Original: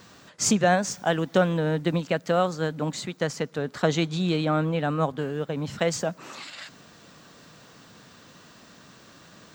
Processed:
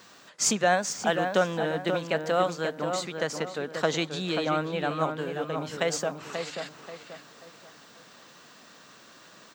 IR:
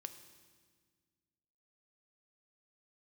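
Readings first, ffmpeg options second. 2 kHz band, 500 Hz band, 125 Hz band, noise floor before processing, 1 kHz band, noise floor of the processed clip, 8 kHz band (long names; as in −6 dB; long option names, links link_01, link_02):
+0.5 dB, −1.5 dB, −8.5 dB, −52 dBFS, −0.5 dB, −53 dBFS, 0.0 dB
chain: -filter_complex "[0:a]highpass=frequency=470:poles=1,asplit=2[link_01][link_02];[link_02]adelay=534,lowpass=frequency=2200:poles=1,volume=-6dB,asplit=2[link_03][link_04];[link_04]adelay=534,lowpass=frequency=2200:poles=1,volume=0.37,asplit=2[link_05][link_06];[link_06]adelay=534,lowpass=frequency=2200:poles=1,volume=0.37,asplit=2[link_07][link_08];[link_08]adelay=534,lowpass=frequency=2200:poles=1,volume=0.37[link_09];[link_01][link_03][link_05][link_07][link_09]amix=inputs=5:normalize=0"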